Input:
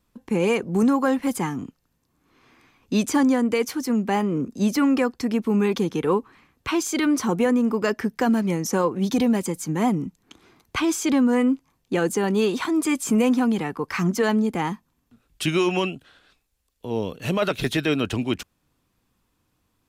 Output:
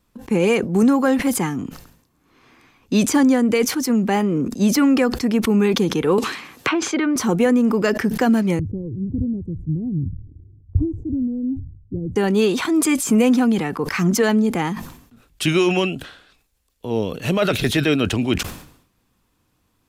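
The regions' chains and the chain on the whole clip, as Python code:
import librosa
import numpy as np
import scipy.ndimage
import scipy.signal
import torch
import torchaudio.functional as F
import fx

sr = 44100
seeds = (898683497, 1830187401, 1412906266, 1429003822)

y = fx.chain(x, sr, fx.env_lowpass_down(base_hz=2000.0, full_db=-21.0),
    fx.highpass(hz=270.0, slope=6),
    fx.band_squash(depth_pct=100), at=(6.18, 7.16))
y = fx.chain(y, sr, fx.cheby2_lowpass(hz=1300.0, order=4, stop_db=70),
    fx.low_shelf_res(hz=140.0, db=13.5, q=3.0), at=(8.59, 12.16))
y = fx.dynamic_eq(y, sr, hz=1000.0, q=3.1, threshold_db=-39.0, ratio=4.0, max_db=-5)
y = fx.sustainer(y, sr, db_per_s=86.0)
y = F.gain(torch.from_numpy(y), 4.0).numpy()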